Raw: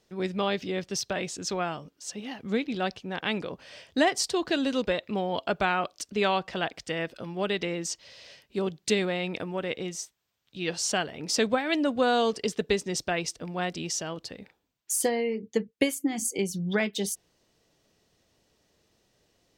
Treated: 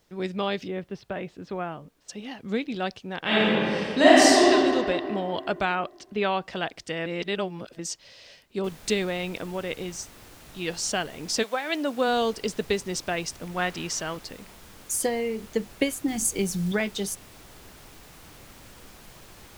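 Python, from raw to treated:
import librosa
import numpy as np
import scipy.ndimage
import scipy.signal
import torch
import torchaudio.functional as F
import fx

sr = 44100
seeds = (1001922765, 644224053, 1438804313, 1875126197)

y = fx.air_absorb(x, sr, metres=490.0, at=(0.67, 2.08), fade=0.02)
y = fx.reverb_throw(y, sr, start_s=3.2, length_s=1.29, rt60_s=2.5, drr_db=-10.0)
y = fx.lowpass(y, sr, hz=3400.0, slope=12, at=(5.75, 6.45))
y = fx.noise_floor_step(y, sr, seeds[0], at_s=8.64, before_db=-70, after_db=-48, tilt_db=3.0)
y = fx.highpass(y, sr, hz=fx.line((11.42, 680.0), (12.07, 180.0)), slope=12, at=(11.42, 12.07), fade=0.02)
y = fx.dynamic_eq(y, sr, hz=1500.0, q=0.78, threshold_db=-45.0, ratio=4.0, max_db=7, at=(13.44, 14.17))
y = fx.bass_treble(y, sr, bass_db=5, treble_db=5, at=(16.08, 16.72))
y = fx.edit(y, sr, fx.reverse_span(start_s=7.06, length_s=0.73), tone=tone)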